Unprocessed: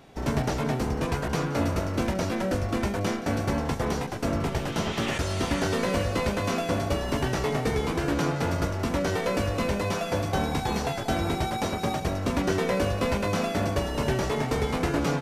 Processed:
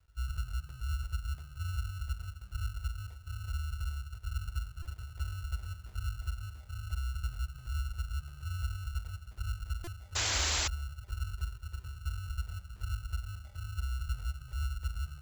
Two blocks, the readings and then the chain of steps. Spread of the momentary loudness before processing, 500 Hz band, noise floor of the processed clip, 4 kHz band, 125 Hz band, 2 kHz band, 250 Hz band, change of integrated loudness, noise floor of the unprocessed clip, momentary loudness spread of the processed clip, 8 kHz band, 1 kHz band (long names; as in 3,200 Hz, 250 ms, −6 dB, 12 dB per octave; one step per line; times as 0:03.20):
2 LU, −30.0 dB, −52 dBFS, −6.0 dB, −7.5 dB, −11.5 dB, −32.5 dB, −11.0 dB, −32 dBFS, 7 LU, −3.0 dB, −18.5 dB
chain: inverse Chebyshev band-stop filter 310–1,200 Hz, stop band 80 dB
in parallel at +2.5 dB: brickwall limiter −32 dBFS, peak gain reduction 9.5 dB
on the sum: echo machine with several playback heads 255 ms, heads first and second, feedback 49%, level −19 dB
auto-filter low-pass saw down 2.9 Hz 580–1,500 Hz
sample-rate reduction 1,400 Hz, jitter 0%
sound drawn into the spectrogram noise, 0:10.15–0:10.68, 200–7,700 Hz −34 dBFS
high-pass filter 53 Hz 12 dB per octave
low-shelf EQ 400 Hz −10 dB
log-companded quantiser 8 bits
low-shelf EQ 110 Hz +7.5 dB
buffer that repeats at 0:04.82/0:09.84, samples 128, times 10
level +2.5 dB